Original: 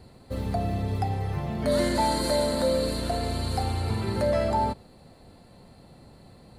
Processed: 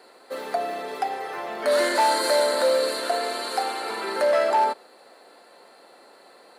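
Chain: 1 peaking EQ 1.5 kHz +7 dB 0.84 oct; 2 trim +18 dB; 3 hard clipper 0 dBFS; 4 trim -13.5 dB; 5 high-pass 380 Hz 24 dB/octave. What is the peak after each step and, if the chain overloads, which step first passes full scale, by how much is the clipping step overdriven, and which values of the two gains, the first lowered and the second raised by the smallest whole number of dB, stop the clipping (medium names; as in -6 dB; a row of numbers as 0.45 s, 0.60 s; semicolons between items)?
-12.0 dBFS, +6.0 dBFS, 0.0 dBFS, -13.5 dBFS, -10.0 dBFS; step 2, 6.0 dB; step 2 +12 dB, step 4 -7.5 dB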